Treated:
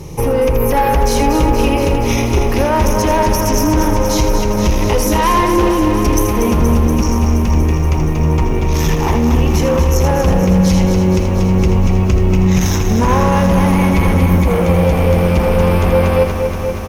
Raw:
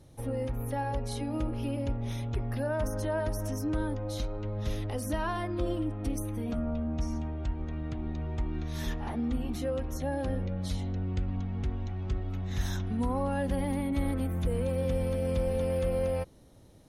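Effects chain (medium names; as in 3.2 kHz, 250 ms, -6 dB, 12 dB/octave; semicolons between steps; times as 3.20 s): rippled EQ curve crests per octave 0.78, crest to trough 12 dB; saturation -30.5 dBFS, distortion -10 dB; delay 81 ms -8.5 dB; loudness maximiser +31.5 dB; bit-crushed delay 237 ms, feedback 80%, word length 6-bit, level -7.5 dB; trim -7 dB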